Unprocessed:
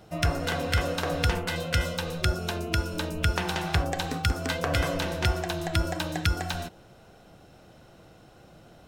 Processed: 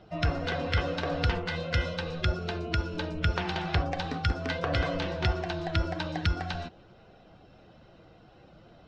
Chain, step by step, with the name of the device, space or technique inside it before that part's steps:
clip after many re-uploads (low-pass filter 4,800 Hz 24 dB per octave; spectral magnitudes quantised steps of 15 dB)
level −1.5 dB

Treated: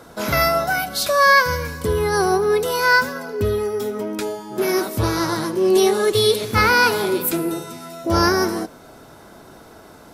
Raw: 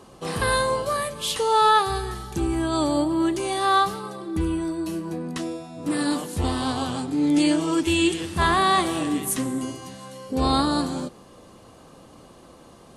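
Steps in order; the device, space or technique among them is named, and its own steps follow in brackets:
nightcore (speed change +28%)
level +4.5 dB

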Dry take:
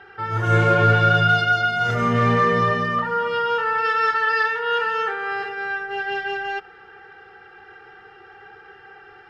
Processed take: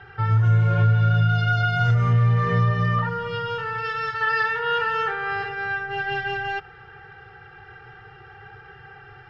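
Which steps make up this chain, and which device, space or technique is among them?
jukebox (low-pass filter 6,300 Hz 12 dB per octave; low shelf with overshoot 180 Hz +10 dB, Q 3; downward compressor 5 to 1, threshold −17 dBFS, peak gain reduction 14 dB)
0:03.09–0:04.21: parametric band 1,000 Hz −7 dB 2.4 octaves

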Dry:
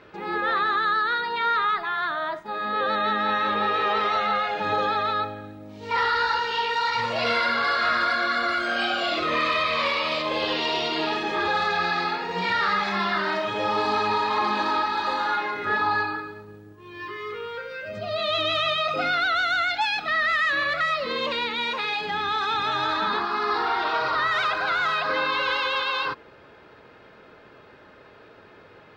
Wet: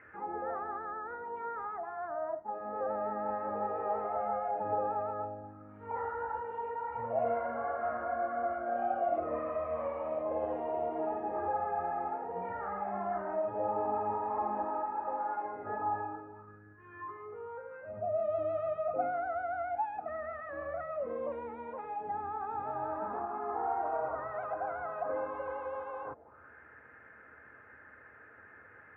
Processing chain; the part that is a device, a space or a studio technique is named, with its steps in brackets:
envelope filter bass rig (envelope-controlled low-pass 700–2,000 Hz down, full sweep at −29 dBFS; loudspeaker in its box 62–2,300 Hz, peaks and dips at 77 Hz +9 dB, 170 Hz −9 dB, 380 Hz −7 dB, 610 Hz −4 dB, 1,000 Hz −5 dB)
0:14.65–0:15.44: low-shelf EQ 130 Hz −10 dB
level −9 dB

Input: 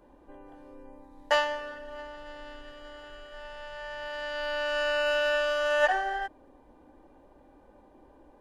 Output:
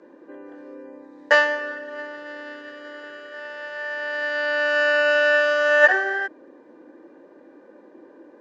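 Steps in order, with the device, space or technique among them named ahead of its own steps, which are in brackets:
television speaker (loudspeaker in its box 190–6,700 Hz, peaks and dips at 340 Hz +8 dB, 490 Hz +6 dB, 790 Hz −8 dB, 1,700 Hz +9 dB, 3,200 Hz −5 dB)
level +6 dB

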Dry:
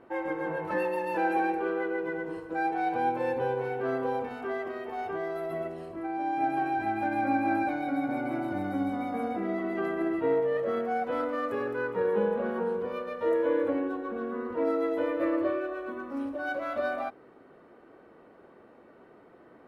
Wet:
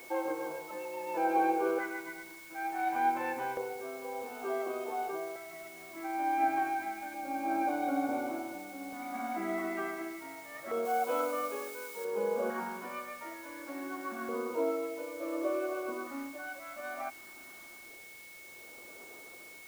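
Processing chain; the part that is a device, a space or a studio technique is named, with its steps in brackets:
shortwave radio (band-pass filter 340–2,900 Hz; amplitude tremolo 0.63 Hz, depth 77%; auto-filter notch square 0.28 Hz 470–1,900 Hz; steady tone 2,200 Hz −52 dBFS; white noise bed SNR 20 dB)
0:10.85–0:12.05: spectral tilt +2 dB per octave
level +2 dB

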